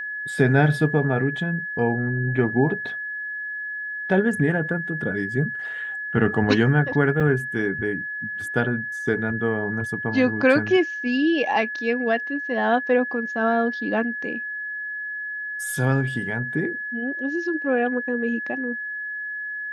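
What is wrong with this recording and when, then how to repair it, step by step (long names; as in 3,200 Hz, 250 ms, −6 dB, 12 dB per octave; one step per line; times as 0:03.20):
whistle 1,700 Hz −28 dBFS
0:07.20–0:07.21: drop-out 5 ms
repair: notch filter 1,700 Hz, Q 30
repair the gap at 0:07.20, 5 ms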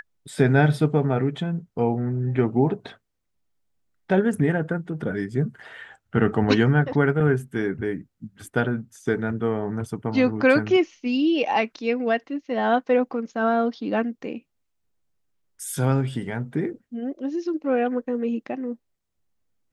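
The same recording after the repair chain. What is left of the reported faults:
none of them is left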